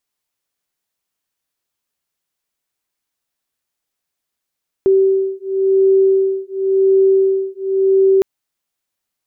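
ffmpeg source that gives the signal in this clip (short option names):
-f lavfi -i "aevalsrc='0.2*(sin(2*PI*385*t)+sin(2*PI*385.93*t))':d=3.36:s=44100"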